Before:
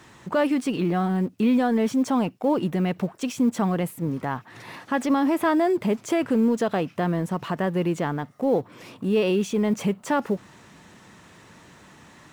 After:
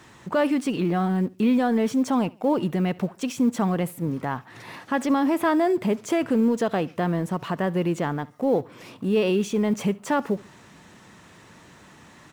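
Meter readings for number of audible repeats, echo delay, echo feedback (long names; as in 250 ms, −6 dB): 2, 70 ms, 34%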